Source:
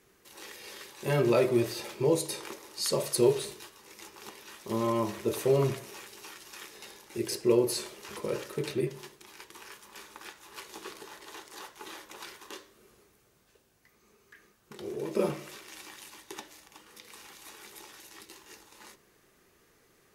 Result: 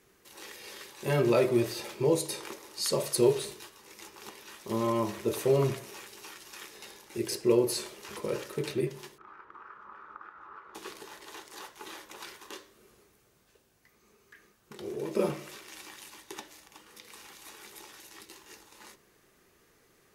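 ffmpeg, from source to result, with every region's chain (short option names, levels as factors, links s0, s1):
-filter_complex "[0:a]asettb=1/sr,asplit=3[s0][s1][s2];[s0]atrim=end=9.184[s3];[s1]atrim=start=9.18:end=10.75,asetpts=PTS-STARTPTS,afade=t=in:d=0.004:c=qsin,afade=t=out:st=1.566:d=0.004:c=qsin,acompressor=threshold=0.00282:ratio=6:attack=3.2:release=140:knee=1:detection=peak,lowpass=f=1300:t=q:w=8.6[s4];[s2]atrim=start=10.746[s5];[s3][s4]acrossfade=d=0.004:c1=hsin:c2=qsin[s6];[s6][s5]acrossfade=d=0.004:c1=qsin:c2=hsin"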